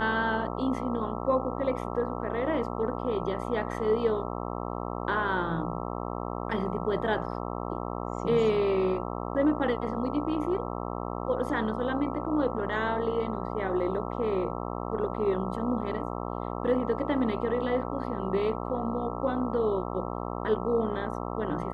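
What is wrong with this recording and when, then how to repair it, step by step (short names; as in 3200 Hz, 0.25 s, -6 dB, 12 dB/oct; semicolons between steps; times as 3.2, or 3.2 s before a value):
buzz 60 Hz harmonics 22 -34 dBFS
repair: de-hum 60 Hz, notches 22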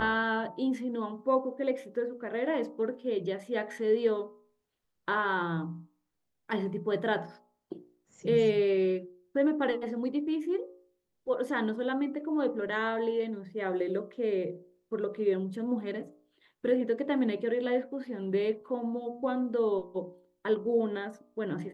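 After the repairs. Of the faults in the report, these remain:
none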